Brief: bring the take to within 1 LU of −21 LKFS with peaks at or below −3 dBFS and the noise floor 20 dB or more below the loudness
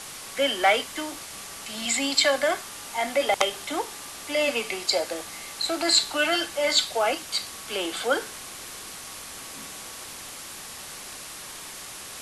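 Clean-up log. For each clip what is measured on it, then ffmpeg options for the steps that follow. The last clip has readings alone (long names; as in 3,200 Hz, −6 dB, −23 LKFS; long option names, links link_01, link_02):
background noise floor −40 dBFS; target noise floor −45 dBFS; integrated loudness −25.0 LKFS; sample peak −4.0 dBFS; target loudness −21.0 LKFS
→ -af "afftdn=noise_reduction=6:noise_floor=-40"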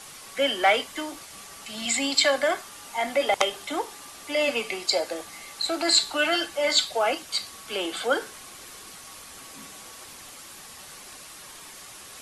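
background noise floor −45 dBFS; integrated loudness −25.0 LKFS; sample peak −4.5 dBFS; target loudness −21.0 LKFS
→ -af "volume=4dB,alimiter=limit=-3dB:level=0:latency=1"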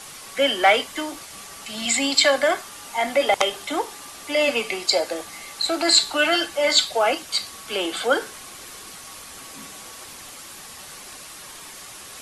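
integrated loudness −21.0 LKFS; sample peak −3.0 dBFS; background noise floor −41 dBFS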